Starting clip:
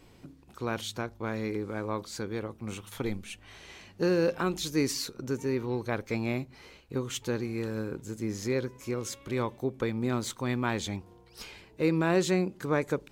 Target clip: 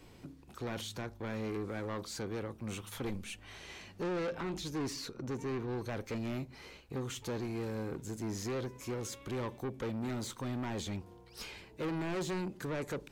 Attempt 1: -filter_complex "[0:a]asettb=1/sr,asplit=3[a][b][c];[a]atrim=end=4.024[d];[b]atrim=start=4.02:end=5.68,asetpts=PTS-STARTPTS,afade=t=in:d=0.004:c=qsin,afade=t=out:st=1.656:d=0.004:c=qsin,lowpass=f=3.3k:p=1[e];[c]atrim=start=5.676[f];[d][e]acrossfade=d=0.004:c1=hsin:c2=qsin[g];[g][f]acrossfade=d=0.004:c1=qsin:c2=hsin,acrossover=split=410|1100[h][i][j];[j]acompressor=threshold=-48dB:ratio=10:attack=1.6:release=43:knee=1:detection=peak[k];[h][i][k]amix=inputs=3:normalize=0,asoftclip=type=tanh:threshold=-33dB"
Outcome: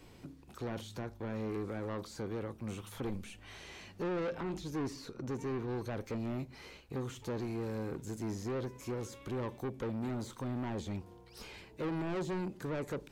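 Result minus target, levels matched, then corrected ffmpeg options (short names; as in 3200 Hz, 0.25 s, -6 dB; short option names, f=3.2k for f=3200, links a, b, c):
compressor: peak gain reduction +9 dB
-filter_complex "[0:a]asettb=1/sr,asplit=3[a][b][c];[a]atrim=end=4.024[d];[b]atrim=start=4.02:end=5.68,asetpts=PTS-STARTPTS,afade=t=in:d=0.004:c=qsin,afade=t=out:st=1.656:d=0.004:c=qsin,lowpass=f=3.3k:p=1[e];[c]atrim=start=5.676[f];[d][e]acrossfade=d=0.004:c1=hsin:c2=qsin[g];[g][f]acrossfade=d=0.004:c1=qsin:c2=hsin,acrossover=split=410|1100[h][i][j];[j]acompressor=threshold=-38dB:ratio=10:attack=1.6:release=43:knee=1:detection=peak[k];[h][i][k]amix=inputs=3:normalize=0,asoftclip=type=tanh:threshold=-33dB"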